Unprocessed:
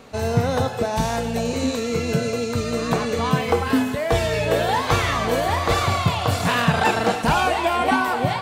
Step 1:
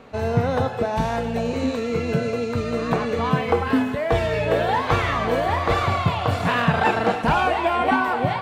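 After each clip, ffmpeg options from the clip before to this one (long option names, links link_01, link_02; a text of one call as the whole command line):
ffmpeg -i in.wav -af "bass=frequency=250:gain=-1,treble=frequency=4000:gain=-13" out.wav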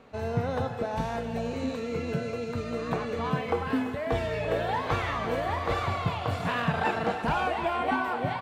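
ffmpeg -i in.wav -af "aecho=1:1:338:0.224,volume=-8dB" out.wav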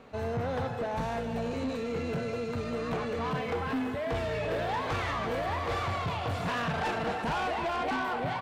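ffmpeg -i in.wav -af "asoftclip=type=tanh:threshold=-28.5dB,volume=1.5dB" out.wav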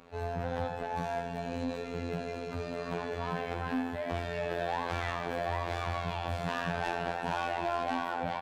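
ffmpeg -i in.wav -filter_complex "[0:a]afftfilt=real='hypot(re,im)*cos(PI*b)':imag='0':win_size=2048:overlap=0.75,asplit=2[link_01][link_02];[link_02]adelay=80,highpass=300,lowpass=3400,asoftclip=type=hard:threshold=-24dB,volume=-7dB[link_03];[link_01][link_03]amix=inputs=2:normalize=0" out.wav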